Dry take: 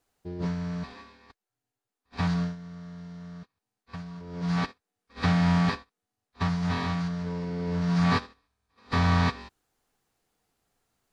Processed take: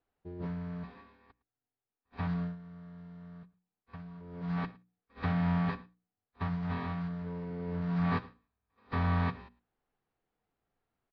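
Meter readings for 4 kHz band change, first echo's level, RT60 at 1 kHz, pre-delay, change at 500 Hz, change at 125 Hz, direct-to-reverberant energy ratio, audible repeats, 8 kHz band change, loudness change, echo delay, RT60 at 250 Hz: -15.0 dB, -23.0 dB, none, none, -6.5 dB, -6.5 dB, none, 1, n/a, -7.0 dB, 0.11 s, none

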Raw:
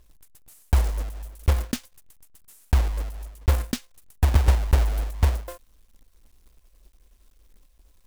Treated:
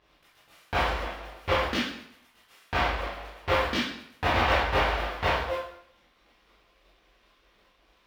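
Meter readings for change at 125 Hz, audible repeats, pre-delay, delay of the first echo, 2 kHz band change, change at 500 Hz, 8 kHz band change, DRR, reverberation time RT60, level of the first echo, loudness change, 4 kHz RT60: -12.0 dB, none, 11 ms, none, +11.0 dB, +8.0 dB, -9.0 dB, -10.0 dB, 0.70 s, none, -2.5 dB, 0.65 s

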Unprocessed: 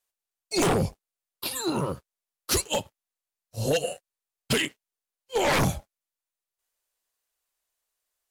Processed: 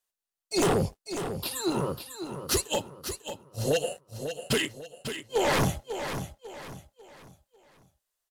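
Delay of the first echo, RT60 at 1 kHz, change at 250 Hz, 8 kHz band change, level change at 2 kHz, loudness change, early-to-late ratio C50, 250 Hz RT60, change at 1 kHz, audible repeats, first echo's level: 0.546 s, none, -0.5 dB, -1.5 dB, -2.0 dB, -3.0 dB, none, none, -1.5 dB, 3, -9.0 dB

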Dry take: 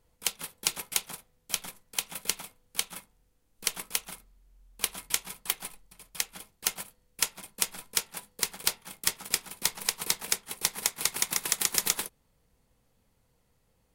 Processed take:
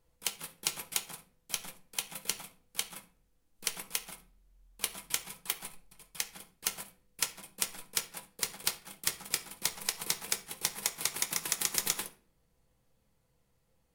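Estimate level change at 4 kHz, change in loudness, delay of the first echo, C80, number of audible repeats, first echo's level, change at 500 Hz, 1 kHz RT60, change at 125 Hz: -4.0 dB, -4.0 dB, none, 20.0 dB, none, none, -3.5 dB, 0.40 s, -2.5 dB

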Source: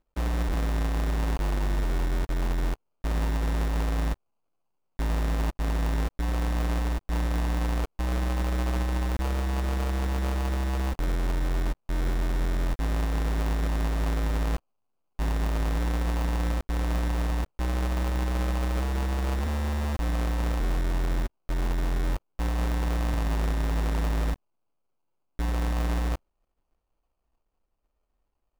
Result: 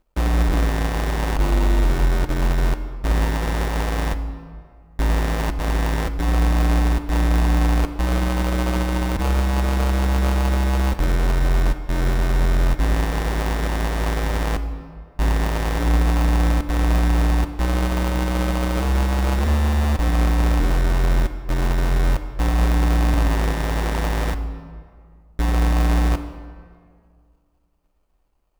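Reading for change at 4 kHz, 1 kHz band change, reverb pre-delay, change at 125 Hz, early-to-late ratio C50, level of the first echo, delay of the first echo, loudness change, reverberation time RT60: +8.5 dB, +8.5 dB, 3 ms, +7.5 dB, 11.0 dB, none, none, +7.5 dB, 2.0 s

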